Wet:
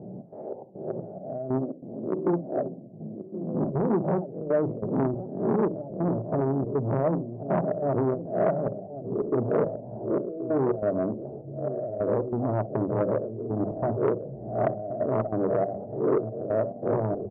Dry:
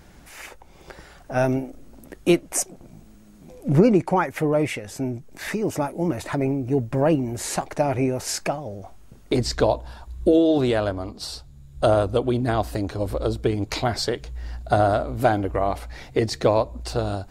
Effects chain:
peak hold with a rise ahead of every peak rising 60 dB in 0.45 s
Chebyshev band-pass filter 110–680 Hz, order 4
mains-hum notches 50/100/150/200/250 Hz
in parallel at +2.5 dB: brickwall limiter −16 dBFS, peak gain reduction 11.5 dB
on the sum: downward compressor 8 to 1, threshold −24 dBFS, peak gain reduction 17 dB
gate pattern "xx.xxx.xxxx..." 140 BPM −12 dB
repeating echo 1,077 ms, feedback 32%, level −13.5 dB
on a send at −10 dB: convolution reverb, pre-delay 5 ms
on the sum: saturating transformer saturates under 630 Hz
level +4 dB

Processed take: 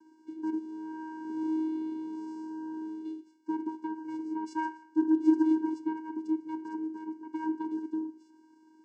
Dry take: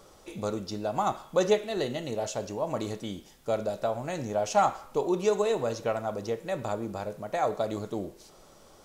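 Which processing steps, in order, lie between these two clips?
0:00.58–0:03.05: spectrum smeared in time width 312 ms
flat-topped bell 3,000 Hz −9 dB
notch filter 700 Hz, Q 12
channel vocoder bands 8, square 316 Hz

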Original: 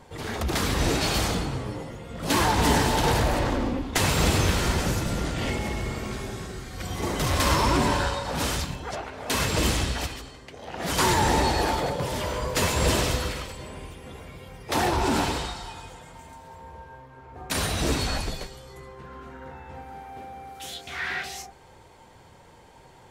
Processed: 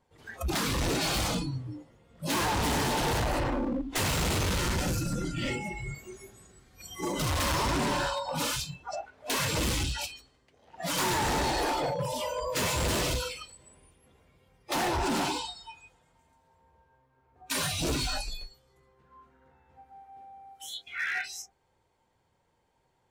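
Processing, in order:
noise reduction from a noise print of the clip's start 21 dB
gain into a clipping stage and back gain 26 dB

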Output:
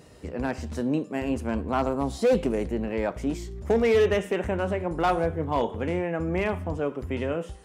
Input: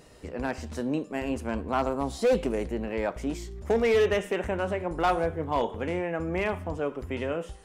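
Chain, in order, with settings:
high-pass filter 62 Hz
low-shelf EQ 300 Hz +6 dB

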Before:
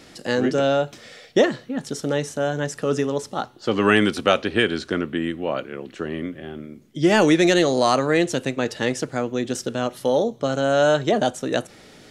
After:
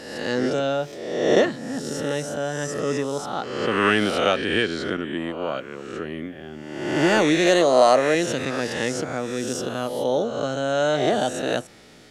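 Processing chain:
peak hold with a rise ahead of every peak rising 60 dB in 1.10 s
0:04.97–0:05.54: downward expander −22 dBFS
0:07.46–0:08.15: graphic EQ with 15 bands 100 Hz −11 dB, 630 Hz +9 dB, 10,000 Hz +4 dB
level −4.5 dB

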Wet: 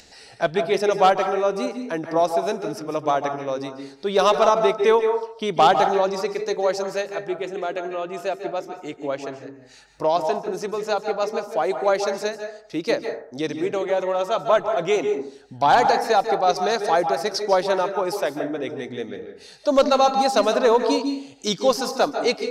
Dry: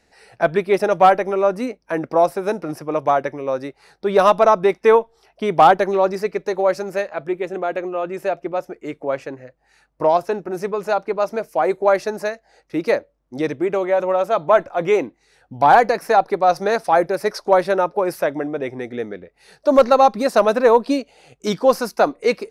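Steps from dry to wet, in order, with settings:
flat-topped bell 4,800 Hz +9.5 dB
upward compression, threshold −35 dBFS
on a send: convolution reverb RT60 0.60 s, pre-delay 142 ms, DRR 6.5 dB
on the sum: level −4.5 dB

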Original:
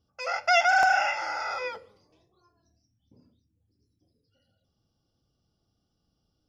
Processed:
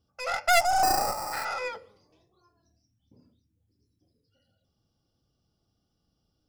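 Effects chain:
stylus tracing distortion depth 0.13 ms
0:00.83–0:01.45: sample-rate reduction 3,300 Hz, jitter 0%
0:00.60–0:01.33: gain on a spectral selection 1,300–4,600 Hz −14 dB

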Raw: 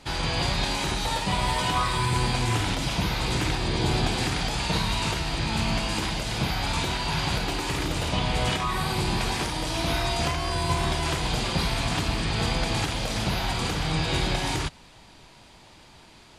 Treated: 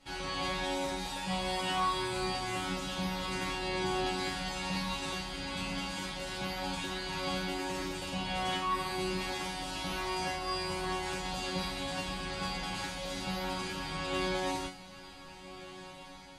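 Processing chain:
resonators tuned to a chord F#3 fifth, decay 0.34 s
on a send: feedback delay with all-pass diffusion 1,535 ms, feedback 54%, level −14.5 dB
on the sum: level +6 dB

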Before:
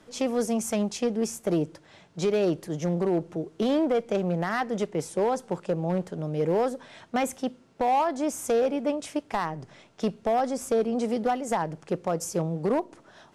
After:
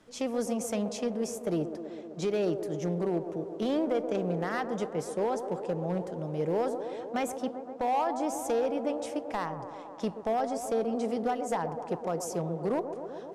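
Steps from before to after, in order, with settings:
delay with a band-pass on its return 128 ms, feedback 80%, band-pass 560 Hz, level −8.5 dB
level −5 dB

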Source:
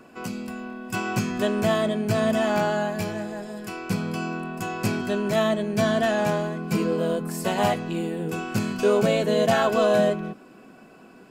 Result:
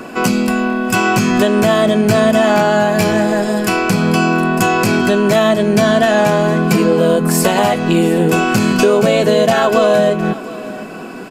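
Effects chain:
parametric band 66 Hz −11 dB 1.2 octaves
downward compressor 6 to 1, threshold −29 dBFS, peak gain reduction 12.5 dB
on a send: single-tap delay 714 ms −18.5 dB
on the sum: downsampling to 32,000 Hz
boost into a limiter +21 dB
level −1 dB

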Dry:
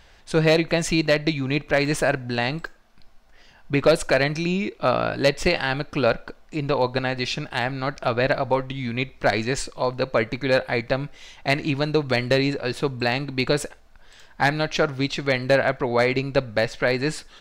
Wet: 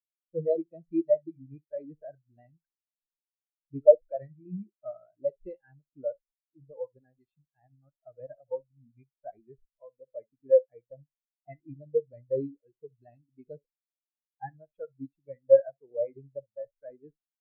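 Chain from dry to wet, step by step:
log-companded quantiser 4 bits
on a send: ambience of single reflections 15 ms −16 dB, 67 ms −10.5 dB
on the sum: pitch vibrato 6.3 Hz 35 cents
every bin expanded away from the loudest bin 4 to 1

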